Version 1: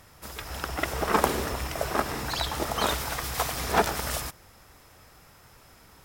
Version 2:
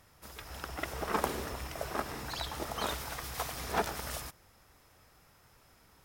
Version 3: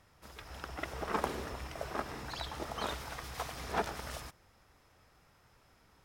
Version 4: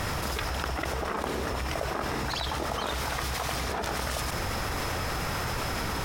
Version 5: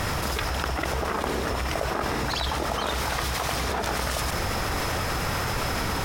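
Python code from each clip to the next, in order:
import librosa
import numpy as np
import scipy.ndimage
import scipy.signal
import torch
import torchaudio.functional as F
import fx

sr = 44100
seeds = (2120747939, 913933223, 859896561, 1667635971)

y1 = fx.notch(x, sr, hz=7600.0, q=28.0)
y1 = F.gain(torch.from_numpy(y1), -8.5).numpy()
y2 = fx.high_shelf(y1, sr, hz=9200.0, db=-12.0)
y2 = F.gain(torch.from_numpy(y2), -2.0).numpy()
y3 = fx.env_flatten(y2, sr, amount_pct=100)
y3 = F.gain(torch.from_numpy(y3), -2.5).numpy()
y4 = y3 + 10.0 ** (-12.5 / 20.0) * np.pad(y3, (int(821 * sr / 1000.0), 0))[:len(y3)]
y4 = F.gain(torch.from_numpy(y4), 3.5).numpy()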